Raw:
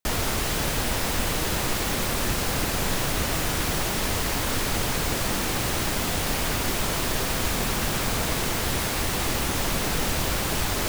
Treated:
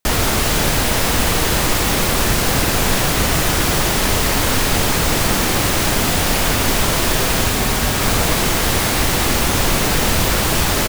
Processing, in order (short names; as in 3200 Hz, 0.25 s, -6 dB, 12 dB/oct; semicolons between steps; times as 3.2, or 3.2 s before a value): 7.44–8.02 notch comb 170 Hz; loudspeakers at several distances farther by 16 m -10 dB, 96 m -11 dB; gain +8.5 dB